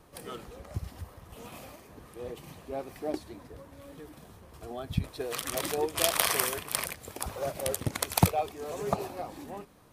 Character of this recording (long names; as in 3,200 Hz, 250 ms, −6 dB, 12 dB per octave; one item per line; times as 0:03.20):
background noise floor −53 dBFS
spectral slope −3.5 dB per octave